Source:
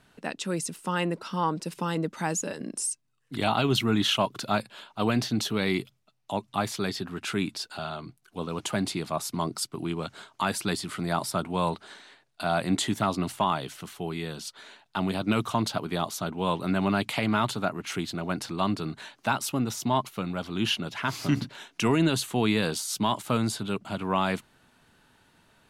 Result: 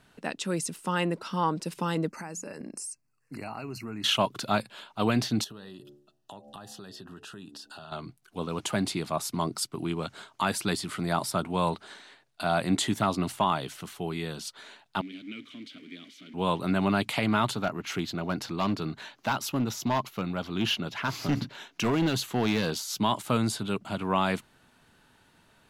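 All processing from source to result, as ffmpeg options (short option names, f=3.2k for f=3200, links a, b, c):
-filter_complex "[0:a]asettb=1/sr,asplit=3[a][b][c];[a]atrim=end=2.104[d];[b]atrim=start=2.1:end=4.04,asetpts=PTS-STARTPTS,afade=t=in:d=0.004:c=qsin,afade=t=out:st=1.936:d=0.004:c=qsin,bandreject=f=60:t=h:w=6,bandreject=f=120:t=h:w=6,bandreject=f=180:t=h:w=6,acompressor=threshold=-36dB:ratio=4:attack=3.2:release=140:knee=1:detection=peak,asuperstop=centerf=3400:order=12:qfactor=2.5[e];[c]atrim=start=4.036[f];[d][e]acrossfade=d=0.004:c1=hsin:c2=qsin[g];[g][f]acrossfade=d=0.004:c1=qsin:c2=hsin,asettb=1/sr,asplit=3[h][i][j];[h]atrim=end=5.444[k];[i]atrim=start=5.44:end=7.92,asetpts=PTS-STARTPTS,afade=t=in:d=0.004:c=qsin,afade=t=out:st=2.476:d=0.004:c=qsin,bandreject=f=72.23:t=h:w=4,bandreject=f=144.46:t=h:w=4,bandreject=f=216.69:t=h:w=4,bandreject=f=288.92:t=h:w=4,bandreject=f=361.15:t=h:w=4,bandreject=f=433.38:t=h:w=4,bandreject=f=505.61:t=h:w=4,bandreject=f=577.84:t=h:w=4,bandreject=f=650.07:t=h:w=4,bandreject=f=722.3:t=h:w=4,bandreject=f=794.53:t=h:w=4,acompressor=threshold=-41dB:ratio=8:attack=3.2:release=140:knee=1:detection=peak,asuperstop=centerf=2200:order=8:qfactor=3.7[l];[j]atrim=start=7.916[m];[k][l]acrossfade=d=0.004:c1=hsin:c2=qsin[n];[n][m]acrossfade=d=0.004:c1=qsin:c2=hsin,asettb=1/sr,asplit=3[o][p][q];[o]atrim=end=15.014[r];[p]atrim=start=15.01:end=16.34,asetpts=PTS-STARTPTS,afade=t=in:d=0.004:c=qsin,afade=t=out:st=1.326:d=0.004:c=qsin,aeval=exprs='val(0)+0.5*0.0266*sgn(val(0))':c=same,asplit=3[s][t][u];[s]bandpass=f=270:t=q:w=8,volume=0dB[v];[t]bandpass=f=2.29k:t=q:w=8,volume=-6dB[w];[u]bandpass=f=3.01k:t=q:w=8,volume=-9dB[x];[v][w][x]amix=inputs=3:normalize=0,lowshelf=f=360:g=-10[y];[q]atrim=start=16.336[z];[r][y]acrossfade=d=0.004:c1=hsin:c2=qsin[aa];[aa][z]acrossfade=d=0.004:c1=qsin:c2=hsin,asettb=1/sr,asplit=3[ab][ac][ad];[ab]atrim=end=17.554[ae];[ac]atrim=start=17.55:end=22.99,asetpts=PTS-STARTPTS,afade=t=in:d=0.004:c=qsin,afade=t=out:st=5.436:d=0.004:c=qsin,asoftclip=type=hard:threshold=-21dB,equalizer=f=9k:t=o:w=0.33:g=-11.5[af];[ad]atrim=start=22.986[ag];[ae][af]acrossfade=d=0.004:c1=hsin:c2=qsin[ah];[ah][ag]acrossfade=d=0.004:c1=qsin:c2=hsin"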